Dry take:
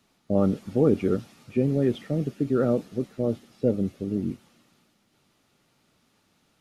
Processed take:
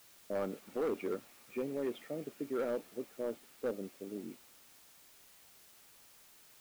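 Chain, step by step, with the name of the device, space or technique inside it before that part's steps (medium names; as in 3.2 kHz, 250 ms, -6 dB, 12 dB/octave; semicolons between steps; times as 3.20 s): drive-through speaker (band-pass 400–3100 Hz; peaking EQ 2.3 kHz +4 dB 0.26 oct; hard clipper -22 dBFS, distortion -13 dB; white noise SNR 20 dB); trim -7.5 dB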